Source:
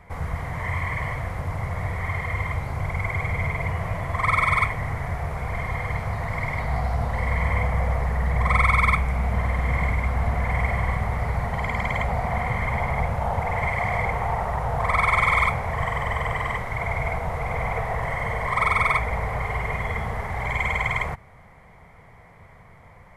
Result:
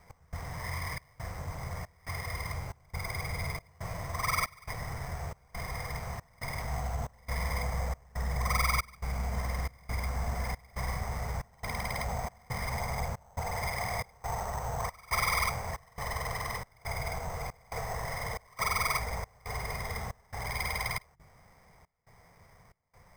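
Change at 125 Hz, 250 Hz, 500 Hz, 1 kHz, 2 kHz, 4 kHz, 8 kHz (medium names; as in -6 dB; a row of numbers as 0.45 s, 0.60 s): -11.0 dB, -11.0 dB, -10.5 dB, -10.5 dB, -11.5 dB, -0.5 dB, +6.0 dB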